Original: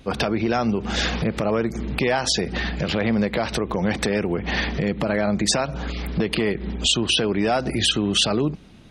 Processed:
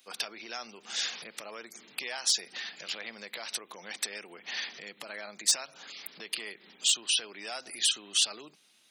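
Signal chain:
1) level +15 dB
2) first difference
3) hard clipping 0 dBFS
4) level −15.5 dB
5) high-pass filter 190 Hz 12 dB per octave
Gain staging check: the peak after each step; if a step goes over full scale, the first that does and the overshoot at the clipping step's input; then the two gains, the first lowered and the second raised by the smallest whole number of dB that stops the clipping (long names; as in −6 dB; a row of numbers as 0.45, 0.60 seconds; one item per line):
+7.5, +6.5, 0.0, −15.5, −15.0 dBFS
step 1, 6.5 dB
step 1 +8 dB, step 4 −8.5 dB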